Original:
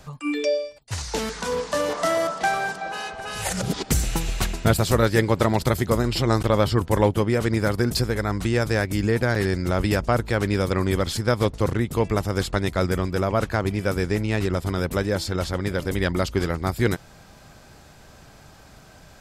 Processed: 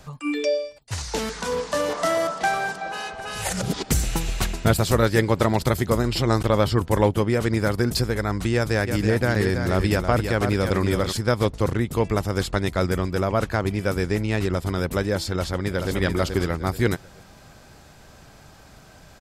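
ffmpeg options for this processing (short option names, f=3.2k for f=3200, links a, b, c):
-filter_complex "[0:a]asplit=3[a][b][c];[a]afade=t=out:st=8.86:d=0.02[d];[b]aecho=1:1:328:0.447,afade=t=in:st=8.86:d=0.02,afade=t=out:st=11.11:d=0.02[e];[c]afade=t=in:st=11.11:d=0.02[f];[d][e][f]amix=inputs=3:normalize=0,asplit=2[g][h];[h]afade=t=in:st=15.37:d=0.01,afade=t=out:st=15.94:d=0.01,aecho=0:1:430|860|1290|1720:0.530884|0.159265|0.0477796|0.0143339[i];[g][i]amix=inputs=2:normalize=0"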